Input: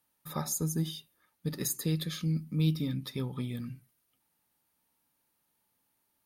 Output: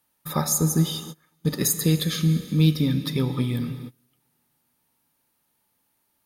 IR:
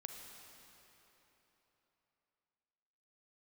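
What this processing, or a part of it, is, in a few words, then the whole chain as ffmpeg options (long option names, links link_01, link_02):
keyed gated reverb: -filter_complex "[0:a]asplit=3[link_01][link_02][link_03];[1:a]atrim=start_sample=2205[link_04];[link_02][link_04]afir=irnorm=-1:irlink=0[link_05];[link_03]apad=whole_len=275692[link_06];[link_05][link_06]sidechaingate=range=-30dB:threshold=-57dB:ratio=16:detection=peak,volume=3.5dB[link_07];[link_01][link_07]amix=inputs=2:normalize=0,volume=5dB"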